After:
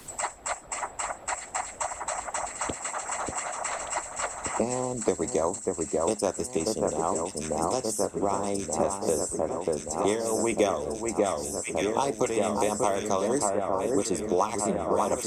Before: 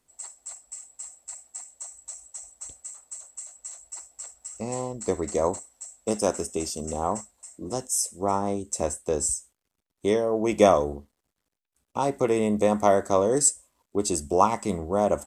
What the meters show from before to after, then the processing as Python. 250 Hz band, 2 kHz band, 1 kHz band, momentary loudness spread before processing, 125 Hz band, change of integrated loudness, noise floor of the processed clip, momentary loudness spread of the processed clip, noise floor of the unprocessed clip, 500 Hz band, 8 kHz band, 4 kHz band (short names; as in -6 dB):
-1.5 dB, +4.5 dB, -0.5 dB, 19 LU, -3.0 dB, -3.0 dB, -45 dBFS, 6 LU, -82 dBFS, -1.5 dB, -1.5 dB, +1.0 dB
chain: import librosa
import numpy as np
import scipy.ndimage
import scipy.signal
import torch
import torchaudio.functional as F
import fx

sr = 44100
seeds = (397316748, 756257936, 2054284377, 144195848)

y = fx.hpss(x, sr, part='harmonic', gain_db=-9)
y = fx.vibrato(y, sr, rate_hz=12.0, depth_cents=15.0)
y = fx.echo_alternate(y, sr, ms=589, hz=1900.0, feedback_pct=83, wet_db=-5)
y = fx.band_squash(y, sr, depth_pct=100)